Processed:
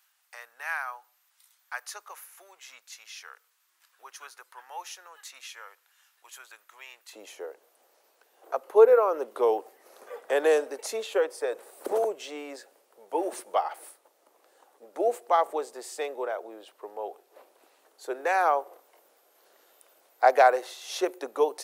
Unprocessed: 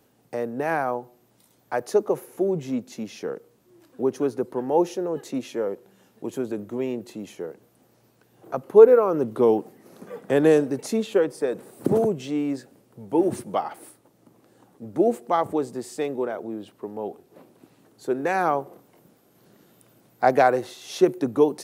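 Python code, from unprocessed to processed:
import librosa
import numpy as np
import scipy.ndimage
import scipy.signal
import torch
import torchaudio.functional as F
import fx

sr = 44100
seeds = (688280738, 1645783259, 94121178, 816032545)

y = fx.highpass(x, sr, hz=fx.steps((0.0, 1200.0), (7.13, 500.0)), slope=24)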